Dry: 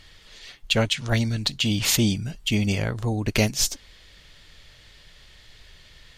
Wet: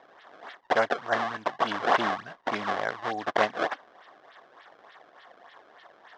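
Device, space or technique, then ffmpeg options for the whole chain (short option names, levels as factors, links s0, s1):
circuit-bent sampling toy: -af "acrusher=samples=27:mix=1:aa=0.000001:lfo=1:lforange=43.2:lforate=3.4,highpass=520,equalizer=f=720:t=q:w=4:g=7,equalizer=f=1100:t=q:w=4:g=7,equalizer=f=1700:t=q:w=4:g=6,equalizer=f=2500:t=q:w=4:g=-7,equalizer=f=4400:t=q:w=4:g=-6,lowpass=f=4600:w=0.5412,lowpass=f=4600:w=1.3066"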